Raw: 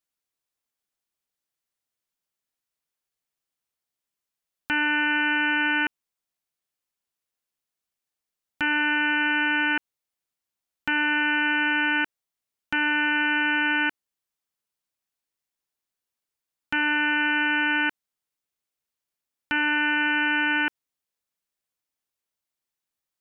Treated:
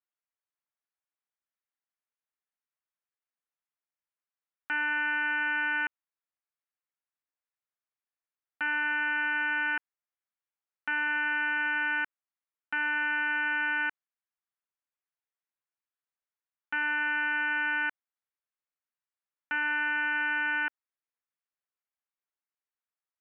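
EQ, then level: band-pass 1700 Hz, Q 1; air absorption 160 m; high shelf 2100 Hz -8.5 dB; 0.0 dB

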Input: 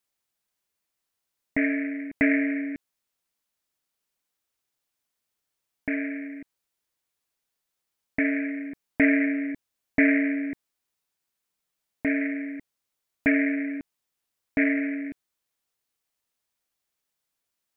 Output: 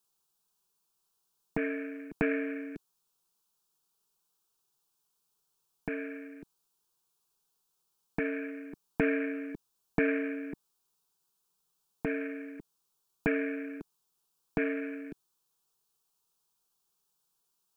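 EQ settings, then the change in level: fixed phaser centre 400 Hz, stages 8; +5.0 dB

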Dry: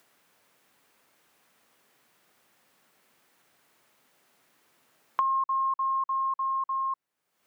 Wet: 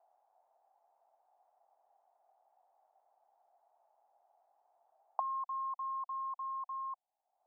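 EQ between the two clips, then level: Butterworth band-pass 750 Hz, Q 3.9; +7.0 dB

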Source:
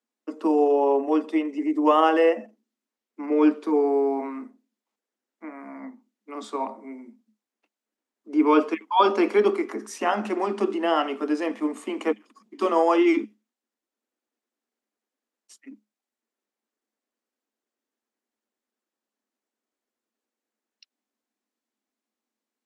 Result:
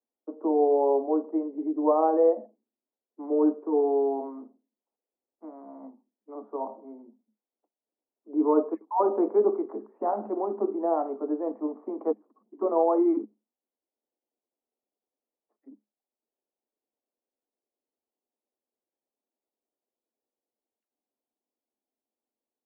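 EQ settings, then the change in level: HPF 350 Hz 12 dB/oct; inverse Chebyshev low-pass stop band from 4800 Hz, stop band 80 dB; air absorption 130 m; 0.0 dB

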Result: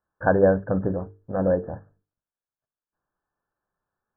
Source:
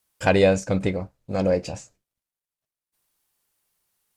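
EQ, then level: brick-wall FIR low-pass 1800 Hz; notches 50/100/150/200/250/300/350/400/450 Hz; 0.0 dB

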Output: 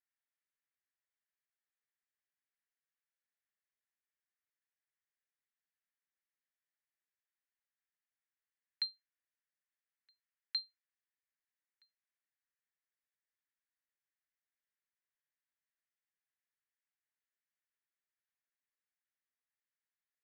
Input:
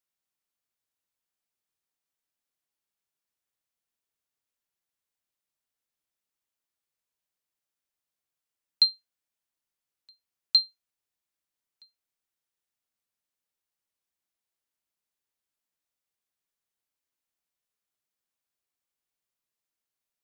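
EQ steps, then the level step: band-pass 1800 Hz, Q 3.9; +1.5 dB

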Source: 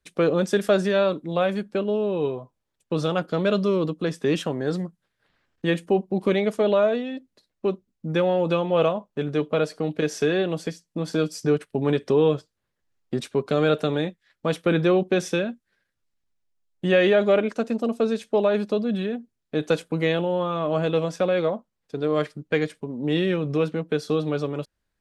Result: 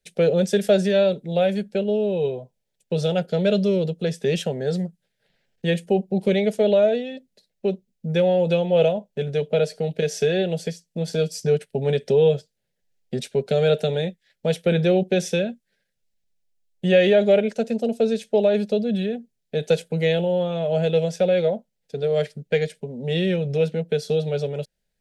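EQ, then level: fixed phaser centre 300 Hz, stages 6; +3.5 dB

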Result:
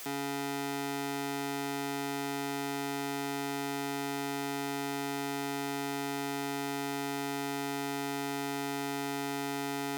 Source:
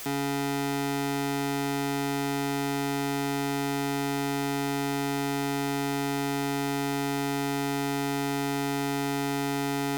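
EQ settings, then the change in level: low shelf 71 Hz -8 dB; low shelf 180 Hz -7.5 dB; -4.5 dB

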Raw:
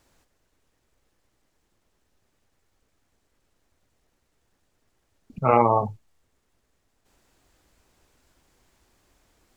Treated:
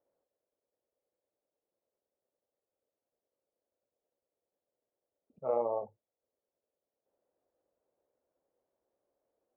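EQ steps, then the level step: band-pass 540 Hz, Q 3.9; air absorption 440 m; -5.0 dB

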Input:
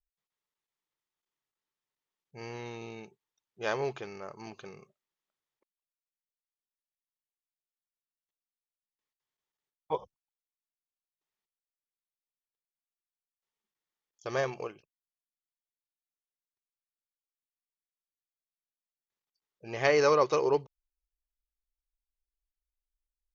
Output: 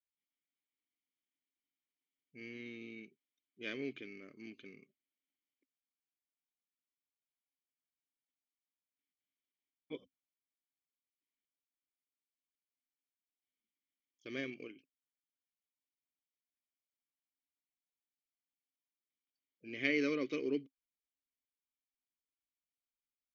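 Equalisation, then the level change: vowel filter i; +7.5 dB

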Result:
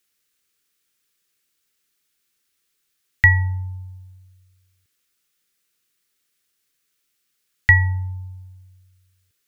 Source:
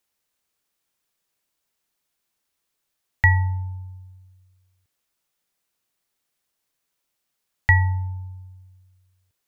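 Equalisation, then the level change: Butterworth band-stop 660 Hz, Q 2.1; low shelf 460 Hz -5.5 dB; bell 970 Hz -13.5 dB 0.36 oct; +6.0 dB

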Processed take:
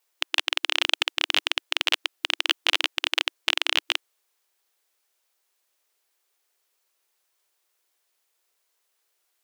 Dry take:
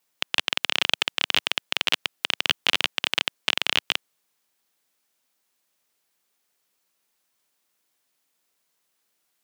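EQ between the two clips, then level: brick-wall FIR high-pass 320 Hz; 0.0 dB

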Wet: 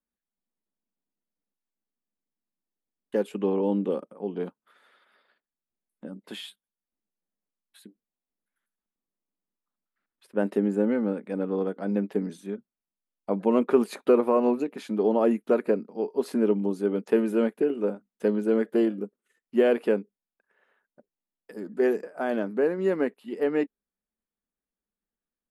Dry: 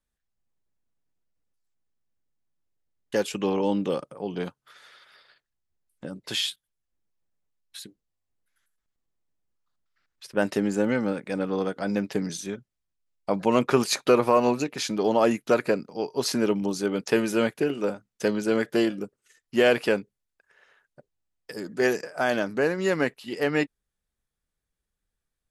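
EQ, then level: EQ curve 950 Hz 0 dB, 3600 Hz -8 dB, 5800 Hz -18 dB, 9100 Hz -6 dB; dynamic EQ 420 Hz, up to +6 dB, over -37 dBFS, Q 2.3; resonant low shelf 160 Hz -9 dB, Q 3; -5.5 dB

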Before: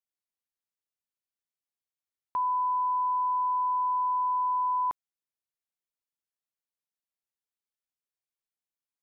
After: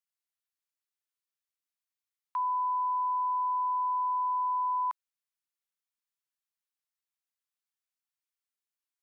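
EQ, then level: HPF 950 Hz 24 dB/oct; 0.0 dB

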